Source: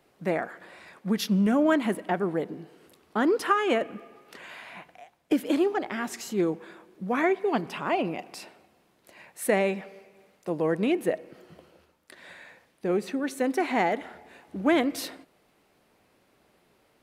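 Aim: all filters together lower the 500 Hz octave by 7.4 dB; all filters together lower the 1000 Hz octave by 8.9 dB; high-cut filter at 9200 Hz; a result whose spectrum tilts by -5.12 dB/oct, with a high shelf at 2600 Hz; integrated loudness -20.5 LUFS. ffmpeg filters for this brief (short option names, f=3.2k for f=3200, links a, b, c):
-af "lowpass=9.2k,equalizer=f=500:t=o:g=-8,equalizer=f=1k:t=o:g=-8.5,highshelf=f=2.6k:g=-5,volume=11.5dB"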